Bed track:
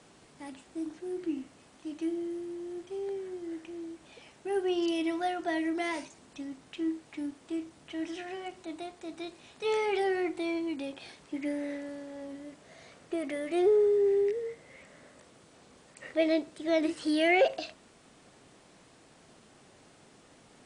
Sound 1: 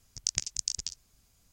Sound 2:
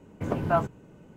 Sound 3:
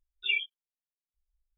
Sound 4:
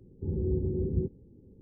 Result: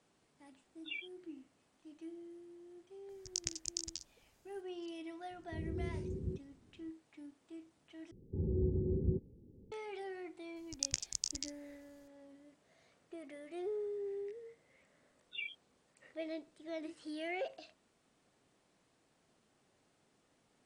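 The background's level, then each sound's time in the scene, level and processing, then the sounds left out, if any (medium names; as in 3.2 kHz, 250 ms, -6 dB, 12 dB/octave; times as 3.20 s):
bed track -16 dB
0.62 s: add 3 -15.5 dB
3.09 s: add 1 -8.5 dB
5.30 s: add 4 -11 dB
8.11 s: replace with 4 -4.5 dB
10.56 s: add 1 -6 dB
15.09 s: add 3 -14.5 dB
not used: 2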